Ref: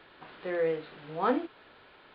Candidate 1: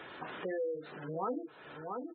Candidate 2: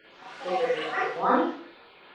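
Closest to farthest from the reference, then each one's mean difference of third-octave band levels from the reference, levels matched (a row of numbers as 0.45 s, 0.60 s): 2, 1; 5.0 dB, 9.0 dB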